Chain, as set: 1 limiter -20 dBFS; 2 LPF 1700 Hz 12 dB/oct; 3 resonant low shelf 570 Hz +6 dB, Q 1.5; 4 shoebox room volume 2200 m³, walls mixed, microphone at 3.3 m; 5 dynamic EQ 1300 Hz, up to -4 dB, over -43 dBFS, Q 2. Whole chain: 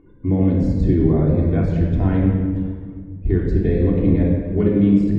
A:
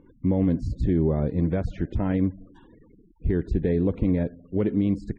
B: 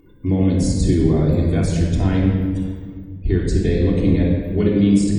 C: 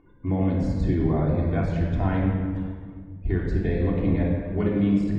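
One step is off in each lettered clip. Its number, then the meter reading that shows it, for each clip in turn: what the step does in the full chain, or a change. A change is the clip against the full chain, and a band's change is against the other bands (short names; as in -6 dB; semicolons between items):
4, momentary loudness spread change -2 LU; 2, 2 kHz band +4.0 dB; 3, 1 kHz band +7.5 dB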